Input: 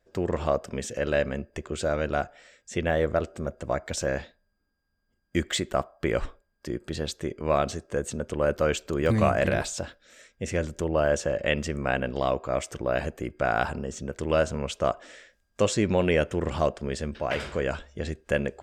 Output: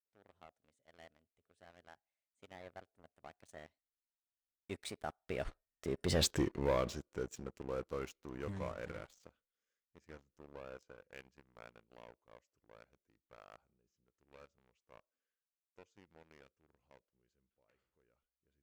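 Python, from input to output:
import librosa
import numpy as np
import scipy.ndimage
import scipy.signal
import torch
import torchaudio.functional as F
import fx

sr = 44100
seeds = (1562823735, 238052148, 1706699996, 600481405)

y = fx.doppler_pass(x, sr, speed_mps=42, closest_m=4.9, pass_at_s=6.25)
y = fx.leveller(y, sr, passes=3)
y = y * librosa.db_to_amplitude(-6.0)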